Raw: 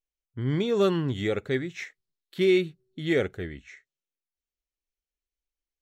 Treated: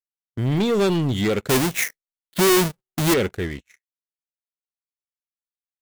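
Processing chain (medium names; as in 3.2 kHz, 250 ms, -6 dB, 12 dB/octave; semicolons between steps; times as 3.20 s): 1.49–3.14 s: square wave that keeps the level; dynamic bell 210 Hz, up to +6 dB, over -43 dBFS, Q 5; waveshaping leveller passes 3; treble shelf 5.2 kHz +9 dB; gate -32 dBFS, range -23 dB; trim -3 dB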